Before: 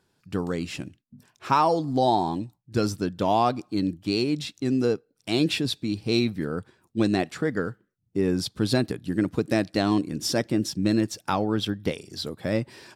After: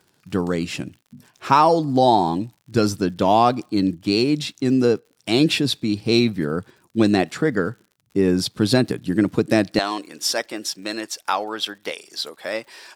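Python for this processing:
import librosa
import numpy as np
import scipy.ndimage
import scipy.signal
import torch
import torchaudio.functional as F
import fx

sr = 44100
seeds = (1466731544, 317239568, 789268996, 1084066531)

y = fx.highpass(x, sr, hz=fx.steps((0.0, 100.0), (9.79, 680.0)), slope=12)
y = fx.dmg_crackle(y, sr, seeds[0], per_s=100.0, level_db=-48.0)
y = y * 10.0 ** (6.0 / 20.0)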